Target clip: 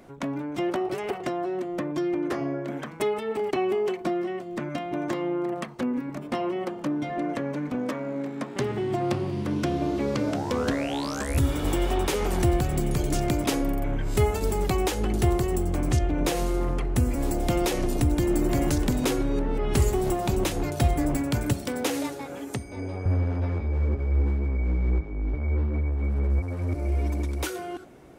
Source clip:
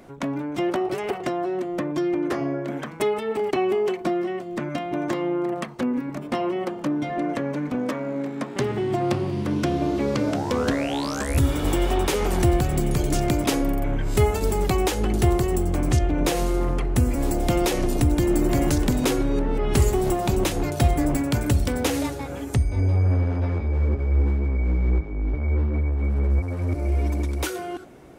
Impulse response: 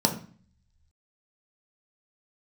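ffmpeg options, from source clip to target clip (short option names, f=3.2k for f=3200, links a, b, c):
-filter_complex "[0:a]asettb=1/sr,asplit=3[a][b][c];[a]atrim=end=21.534[d];[b]atrim=start=21.53:end=23.06,asetpts=PTS-STARTPTS,afade=t=in:d=0.004:c=qsin,afade=t=out:st=1.526:d=0.004:c=qsin,highpass=190[e];[c]atrim=start=23.056[f];[d][e]acrossfade=d=0.004:c1=hsin:c2=qsin[g];[g][f]acrossfade=d=0.004:c1=qsin:c2=hsin,volume=-3dB"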